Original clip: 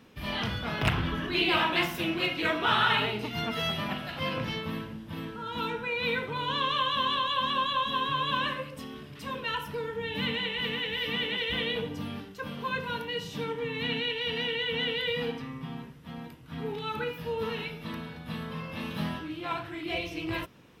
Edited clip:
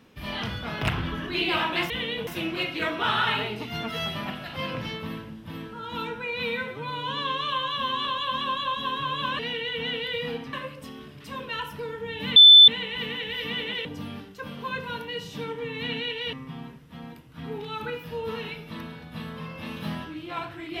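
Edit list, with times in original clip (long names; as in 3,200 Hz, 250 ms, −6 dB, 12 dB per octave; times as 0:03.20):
0:06.06–0:07.14: time-stretch 1.5×
0:10.31: insert tone 3,520 Hz −7 dBFS 0.32 s
0:11.48–0:11.85: move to 0:01.90
0:14.33–0:15.47: move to 0:08.48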